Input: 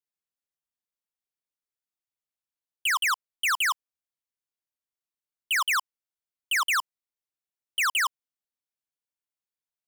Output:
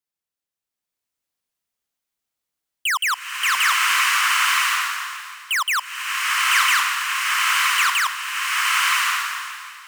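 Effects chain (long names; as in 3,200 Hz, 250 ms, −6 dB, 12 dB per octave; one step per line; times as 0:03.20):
slow-attack reverb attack 1,050 ms, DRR −5.5 dB
level +3.5 dB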